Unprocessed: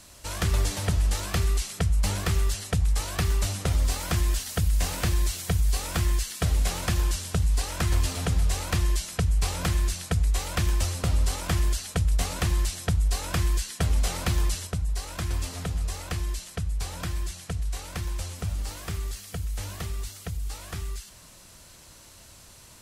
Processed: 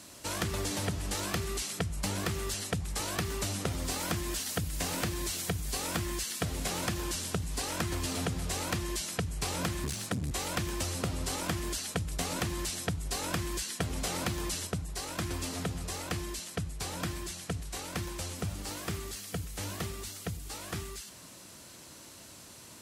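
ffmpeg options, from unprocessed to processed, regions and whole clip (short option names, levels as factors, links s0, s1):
-filter_complex "[0:a]asettb=1/sr,asplit=3[s0][s1][s2];[s0]atrim=end=9.844[s3];[s1]atrim=start=9.84:end=10.31,asetpts=PTS-STARTPTS,afade=t=in:d=0.004:c=qsin,afade=t=out:st=0.466:d=0.004:c=qsin,afreqshift=22,aeval=exprs='clip(val(0),-1,0.0178)':c=same[s4];[s2]atrim=start=10.306[s5];[s3][s4]acrossfade=d=0.004:c1=hsin:c2=qsin[s6];[s6][s5]acrossfade=d=0.004:c1=qsin:c2=hsin,highpass=110,equalizer=f=290:w=1.4:g=6,acompressor=threshold=0.0355:ratio=6"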